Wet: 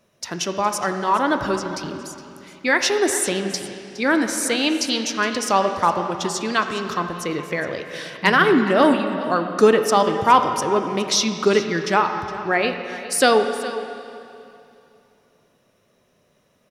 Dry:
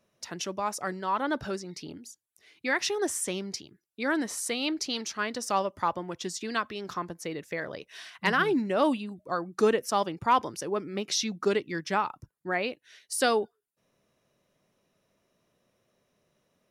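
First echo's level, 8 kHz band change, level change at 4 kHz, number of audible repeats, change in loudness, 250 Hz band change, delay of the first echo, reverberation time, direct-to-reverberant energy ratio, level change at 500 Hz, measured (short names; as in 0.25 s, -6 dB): -15.5 dB, +9.0 dB, +9.5 dB, 1, +9.5 dB, +10.0 dB, 0.414 s, 2.7 s, 6.0 dB, +10.0 dB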